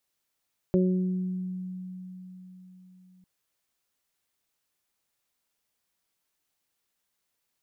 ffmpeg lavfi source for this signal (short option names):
-f lavfi -i "aevalsrc='0.0944*pow(10,-3*t/4.34)*sin(2*PI*184*t)+0.0841*pow(10,-3*t/1.16)*sin(2*PI*368*t)+0.0376*pow(10,-3*t/0.58)*sin(2*PI*552*t)':d=2.5:s=44100"